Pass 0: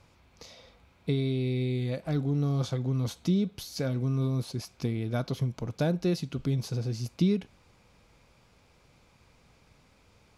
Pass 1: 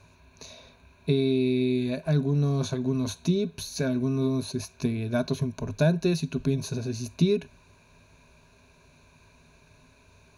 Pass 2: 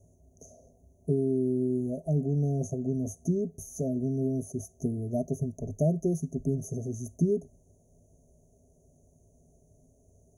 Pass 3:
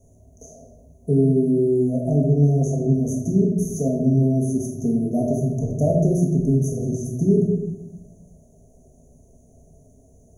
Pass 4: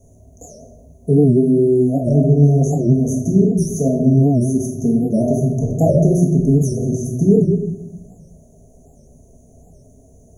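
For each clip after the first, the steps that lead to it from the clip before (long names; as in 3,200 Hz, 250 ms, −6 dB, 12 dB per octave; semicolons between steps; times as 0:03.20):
EQ curve with evenly spaced ripples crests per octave 1.5, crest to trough 13 dB; level +2 dB
Chebyshev band-stop filter 730–6,200 Hz, order 5; level −2.5 dB
rectangular room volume 390 cubic metres, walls mixed, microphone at 1.7 metres; level +4.5 dB
wow of a warped record 78 rpm, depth 160 cents; level +5 dB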